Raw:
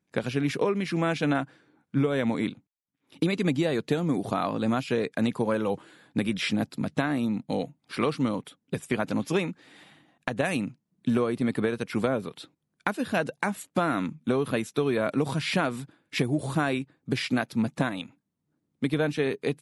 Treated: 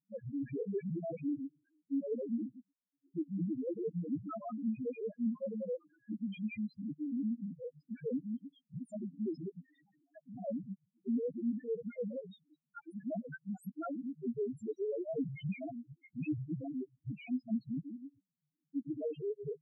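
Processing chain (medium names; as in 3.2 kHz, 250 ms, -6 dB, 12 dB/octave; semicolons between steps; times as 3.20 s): time reversed locally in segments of 113 ms; loudest bins only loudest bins 1; trim -2.5 dB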